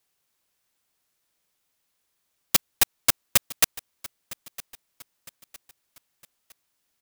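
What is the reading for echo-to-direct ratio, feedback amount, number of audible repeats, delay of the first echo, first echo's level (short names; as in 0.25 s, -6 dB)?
-18.0 dB, 41%, 3, 0.959 s, -19.0 dB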